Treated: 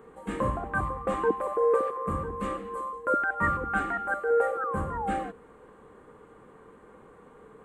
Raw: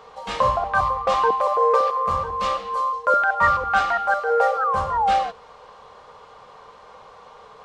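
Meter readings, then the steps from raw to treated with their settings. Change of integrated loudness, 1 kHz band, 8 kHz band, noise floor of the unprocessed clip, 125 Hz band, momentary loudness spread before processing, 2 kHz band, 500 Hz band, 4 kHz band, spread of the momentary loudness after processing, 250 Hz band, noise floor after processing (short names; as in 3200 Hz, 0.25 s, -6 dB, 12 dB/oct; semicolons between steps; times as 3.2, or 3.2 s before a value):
-8.0 dB, -11.0 dB, n/a, -47 dBFS, 0.0 dB, 6 LU, -7.0 dB, -4.5 dB, under -15 dB, 9 LU, +7.0 dB, -54 dBFS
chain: EQ curve 110 Hz 0 dB, 320 Hz +12 dB, 610 Hz -11 dB, 1000 Hz -12 dB, 1700 Hz -4 dB, 5400 Hz -28 dB, 8100 Hz 0 dB; gain -1 dB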